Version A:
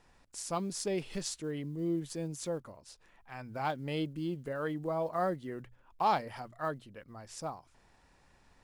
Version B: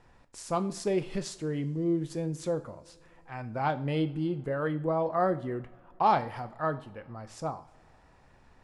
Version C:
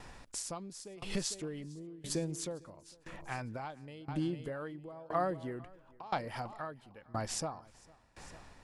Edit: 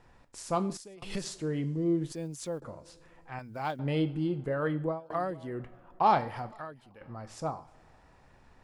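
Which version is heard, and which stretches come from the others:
B
0.77–1.24 from C
2.12–2.62 from A
3.39–3.79 from A
4.93–5.54 from C, crossfade 0.16 s
6.52–7.01 from C

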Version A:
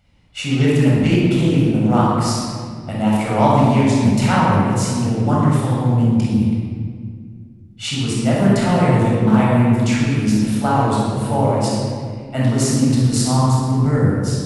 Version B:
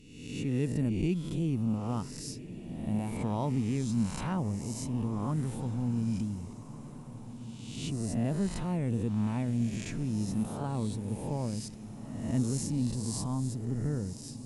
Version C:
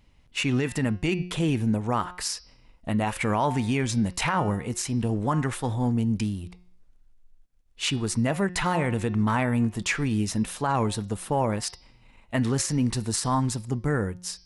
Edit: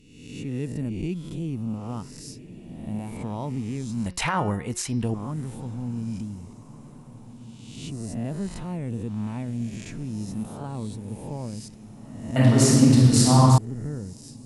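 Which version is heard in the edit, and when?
B
4.06–5.14 from C
12.36–13.58 from A

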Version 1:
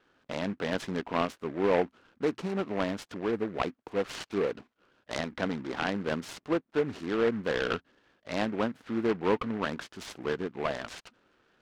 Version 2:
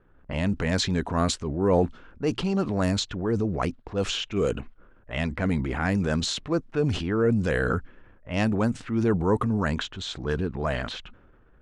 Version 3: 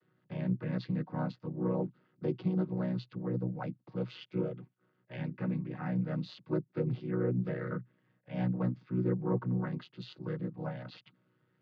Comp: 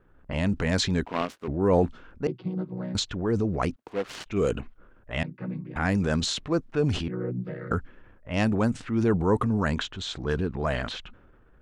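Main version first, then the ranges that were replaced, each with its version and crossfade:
2
1.05–1.48 from 1
2.27–2.95 from 3
3.76–4.26 from 1
5.23–5.76 from 3
7.08–7.71 from 3

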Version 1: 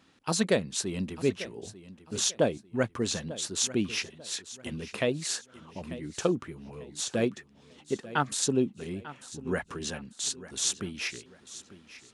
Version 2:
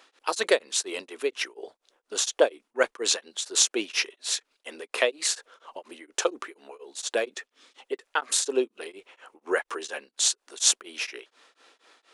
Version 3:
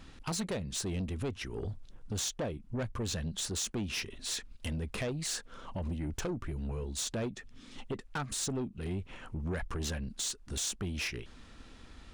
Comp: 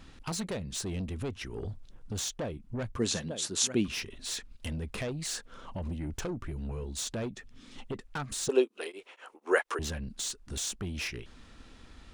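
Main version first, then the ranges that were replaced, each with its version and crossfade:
3
2.98–3.88 from 1
8.49–9.79 from 2

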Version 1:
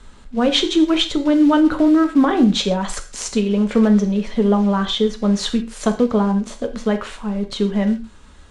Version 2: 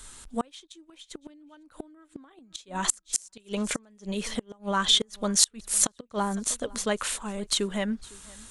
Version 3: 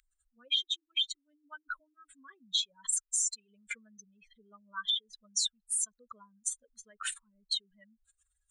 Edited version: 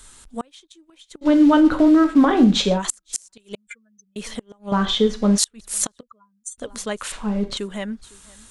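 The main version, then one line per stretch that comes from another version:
2
1.24–2.8 from 1, crossfade 0.06 s
3.55–4.16 from 3
4.72–5.38 from 1
6.03–6.58 from 3
7.12–7.57 from 1

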